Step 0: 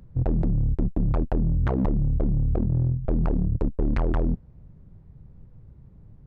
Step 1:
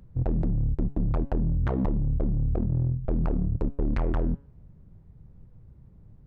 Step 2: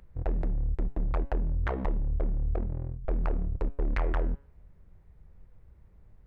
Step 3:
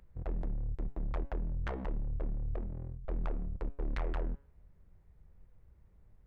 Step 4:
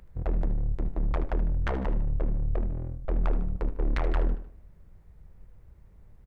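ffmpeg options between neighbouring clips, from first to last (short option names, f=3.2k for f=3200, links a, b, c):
-af "bandreject=f=139.8:t=h:w=4,bandreject=f=279.6:t=h:w=4,bandreject=f=419.4:t=h:w=4,bandreject=f=559.2:t=h:w=4,bandreject=f=699:t=h:w=4,bandreject=f=838.8:t=h:w=4,bandreject=f=978.6:t=h:w=4,bandreject=f=1.1184k:t=h:w=4,bandreject=f=1.2582k:t=h:w=4,bandreject=f=1.398k:t=h:w=4,bandreject=f=1.5378k:t=h:w=4,bandreject=f=1.6776k:t=h:w=4,bandreject=f=1.8174k:t=h:w=4,bandreject=f=1.9572k:t=h:w=4,bandreject=f=2.097k:t=h:w=4,bandreject=f=2.2368k:t=h:w=4,bandreject=f=2.3766k:t=h:w=4,bandreject=f=2.5164k:t=h:w=4,bandreject=f=2.6562k:t=h:w=4,bandreject=f=2.796k:t=h:w=4,bandreject=f=2.9358k:t=h:w=4,bandreject=f=3.0756k:t=h:w=4,bandreject=f=3.2154k:t=h:w=4,bandreject=f=3.3552k:t=h:w=4,bandreject=f=3.495k:t=h:w=4,bandreject=f=3.6348k:t=h:w=4,bandreject=f=3.7746k:t=h:w=4,bandreject=f=3.9144k:t=h:w=4,volume=-2.5dB"
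-af "equalizer=f=125:t=o:w=1:g=-12,equalizer=f=250:t=o:w=1:g=-8,equalizer=f=2k:t=o:w=1:g=6"
-af "aeval=exprs='(tanh(14.1*val(0)+0.45)-tanh(0.45))/14.1':c=same,volume=-4dB"
-af "aecho=1:1:76|152|228|304:0.224|0.0985|0.0433|0.0191,volume=8dB"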